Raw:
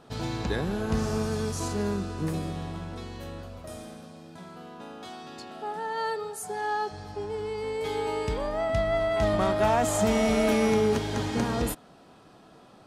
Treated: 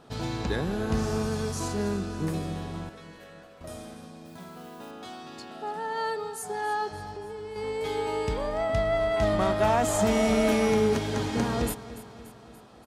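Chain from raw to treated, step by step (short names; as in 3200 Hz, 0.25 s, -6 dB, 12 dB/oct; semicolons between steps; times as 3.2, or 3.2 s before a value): 2.89–3.61 rippled Chebyshev high-pass 440 Hz, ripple 9 dB; 4.25–4.91 modulation noise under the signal 17 dB; 7.05–7.56 compressor 3:1, threshold -38 dBFS, peak gain reduction 6.5 dB; on a send: feedback echo 0.288 s, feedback 58%, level -15.5 dB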